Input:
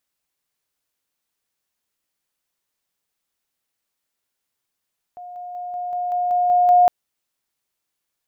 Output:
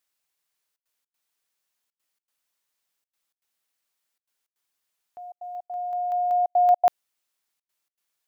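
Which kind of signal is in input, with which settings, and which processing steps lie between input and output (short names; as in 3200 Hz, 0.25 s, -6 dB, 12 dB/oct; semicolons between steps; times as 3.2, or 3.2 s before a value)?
level ladder 715 Hz -33.5 dBFS, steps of 3 dB, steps 9, 0.19 s 0.00 s
low shelf 450 Hz -9 dB; step gate "xxxxxxxx.xx." 158 bpm -60 dB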